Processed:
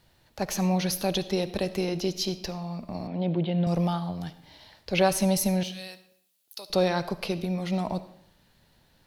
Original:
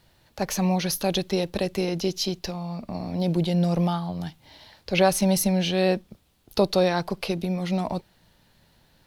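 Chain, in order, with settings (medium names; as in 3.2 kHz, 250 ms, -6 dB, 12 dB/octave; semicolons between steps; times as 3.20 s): 3.07–3.67 s: elliptic band-pass 120–3200 Hz, stop band 40 dB; 5.63–6.70 s: differentiator; algorithmic reverb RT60 0.69 s, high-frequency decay 0.8×, pre-delay 30 ms, DRR 13.5 dB; trim -2.5 dB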